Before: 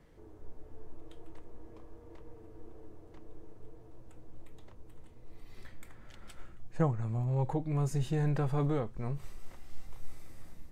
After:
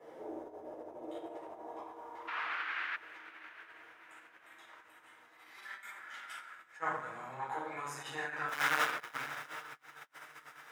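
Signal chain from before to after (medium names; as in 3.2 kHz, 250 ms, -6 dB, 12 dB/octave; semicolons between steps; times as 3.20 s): 8.48–9.22 s: square wave that keeps the level; tilt shelf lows +4.5 dB, about 1.1 kHz; band-stop 4.4 kHz, Q 11; simulated room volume 260 m³, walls mixed, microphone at 4.2 m; in parallel at -1 dB: compression 5:1, threshold -14 dBFS, peak gain reduction 17 dB; 2.27–2.95 s: on the sum: band noise 220–2500 Hz -34 dBFS; on a send: echo that smears into a reverb 708 ms, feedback 49%, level -14 dB; on the sum: saturation 0 dBFS, distortion -11 dB; high-pass sweep 560 Hz -> 1.5 kHz, 1.25–2.75 s; 5.57–5.99 s: comb 5.1 ms, depth 89%; trim -6.5 dB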